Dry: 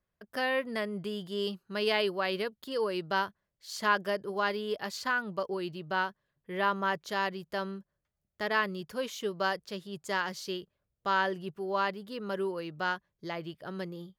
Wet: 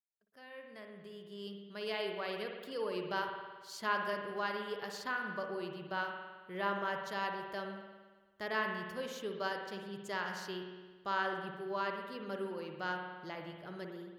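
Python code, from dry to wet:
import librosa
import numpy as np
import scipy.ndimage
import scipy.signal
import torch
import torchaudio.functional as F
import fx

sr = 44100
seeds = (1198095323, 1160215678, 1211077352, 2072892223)

y = fx.fade_in_head(x, sr, length_s=2.86)
y = fx.rev_spring(y, sr, rt60_s=1.4, pass_ms=(55,), chirp_ms=65, drr_db=3.0)
y = y * librosa.db_to_amplitude(-7.5)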